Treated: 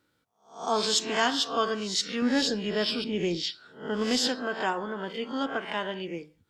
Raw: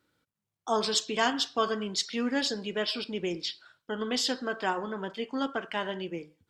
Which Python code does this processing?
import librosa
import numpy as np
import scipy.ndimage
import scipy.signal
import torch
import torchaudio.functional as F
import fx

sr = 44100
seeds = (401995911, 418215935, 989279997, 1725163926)

y = fx.spec_swells(x, sr, rise_s=0.42)
y = fx.low_shelf(y, sr, hz=270.0, db=8.5, at=(2.22, 4.28))